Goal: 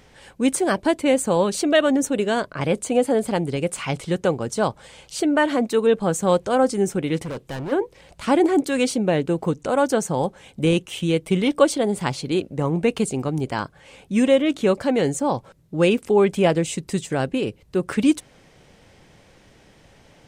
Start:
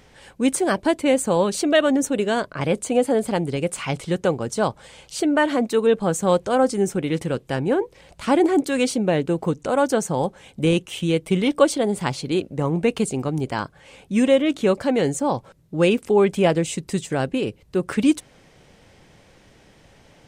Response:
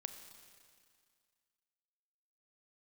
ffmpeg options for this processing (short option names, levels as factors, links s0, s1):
-filter_complex "[0:a]asplit=3[s0][s1][s2];[s0]afade=t=out:st=7.22:d=0.02[s3];[s1]asoftclip=type=hard:threshold=0.0447,afade=t=in:st=7.22:d=0.02,afade=t=out:st=7.71:d=0.02[s4];[s2]afade=t=in:st=7.71:d=0.02[s5];[s3][s4][s5]amix=inputs=3:normalize=0"